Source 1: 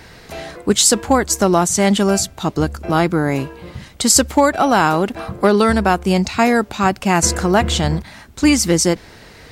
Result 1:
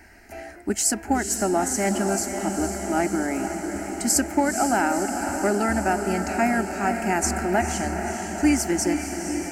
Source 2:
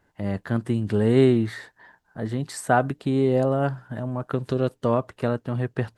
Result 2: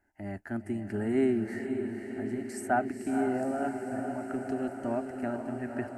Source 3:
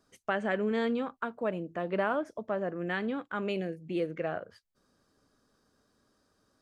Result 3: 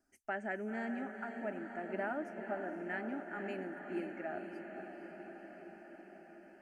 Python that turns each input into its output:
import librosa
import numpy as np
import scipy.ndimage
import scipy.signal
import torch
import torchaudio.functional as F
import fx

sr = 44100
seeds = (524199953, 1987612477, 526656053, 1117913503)

p1 = fx.fixed_phaser(x, sr, hz=730.0, stages=8)
p2 = p1 + fx.echo_diffused(p1, sr, ms=493, feedback_pct=72, wet_db=-7.0, dry=0)
y = F.gain(torch.from_numpy(p2), -6.0).numpy()